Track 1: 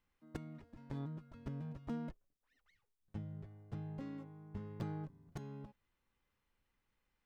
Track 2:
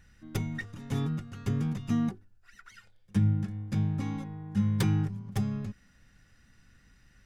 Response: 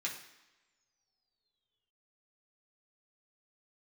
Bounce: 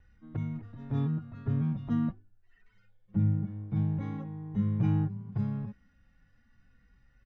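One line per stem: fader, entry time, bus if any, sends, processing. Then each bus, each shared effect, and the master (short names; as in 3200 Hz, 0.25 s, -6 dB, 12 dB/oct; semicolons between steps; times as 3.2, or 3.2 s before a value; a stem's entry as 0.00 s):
0.0 dB, 0.00 s, no send, LPF 2700 Hz; sample leveller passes 1
-1.0 dB, 1.5 ms, no send, median-filter separation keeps harmonic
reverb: off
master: LPF 4400 Hz 12 dB/oct; high shelf 2400 Hz -10.5 dB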